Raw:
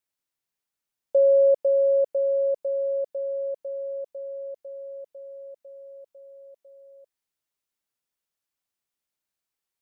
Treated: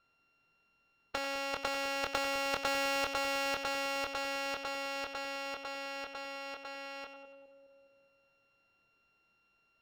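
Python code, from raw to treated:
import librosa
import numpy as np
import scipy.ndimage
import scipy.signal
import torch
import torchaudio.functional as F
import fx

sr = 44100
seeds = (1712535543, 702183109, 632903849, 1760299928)

p1 = np.r_[np.sort(x[:len(x) // 32 * 32].reshape(-1, 32), axis=1).ravel(), x[len(x) // 32 * 32:]]
p2 = fx.over_compress(p1, sr, threshold_db=-26.0, ratio=-1.0)
p3 = fx.air_absorb(p2, sr, metres=230.0)
p4 = fx.doubler(p3, sr, ms=25.0, db=-7.0)
p5 = p4 + fx.echo_split(p4, sr, split_hz=560.0, low_ms=207, high_ms=94, feedback_pct=52, wet_db=-11.5, dry=0)
y = fx.spectral_comp(p5, sr, ratio=2.0)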